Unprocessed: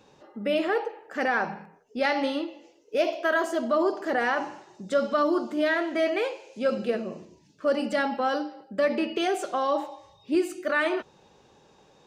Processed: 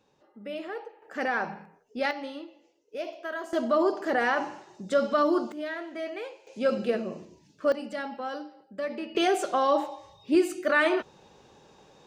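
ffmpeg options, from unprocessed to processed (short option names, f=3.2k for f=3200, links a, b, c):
-af "asetnsamples=n=441:p=0,asendcmd='1.02 volume volume -3dB;2.11 volume volume -10.5dB;3.53 volume volume 0dB;5.52 volume volume -10dB;6.47 volume volume 0dB;7.72 volume volume -8.5dB;9.15 volume volume 2dB',volume=-11dB"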